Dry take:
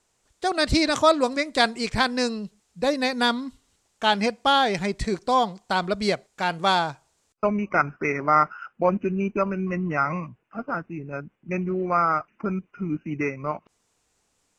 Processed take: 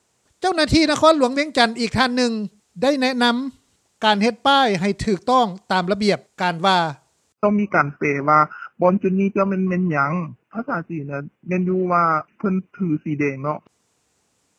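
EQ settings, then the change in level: HPF 91 Hz; low shelf 340 Hz +5 dB; +3.5 dB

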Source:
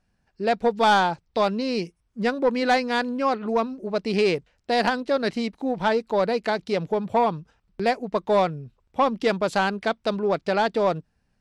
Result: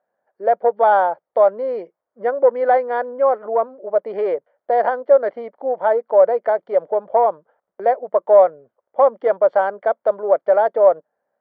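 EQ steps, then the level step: polynomial smoothing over 41 samples; resonant high-pass 570 Hz, resonance Q 4.5; air absorption 250 m; 0.0 dB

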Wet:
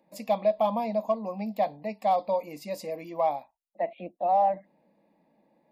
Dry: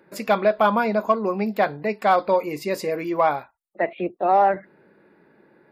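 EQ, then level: bell 700 Hz +3.5 dB 0.77 oct; fixed phaser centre 390 Hz, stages 6; -7.5 dB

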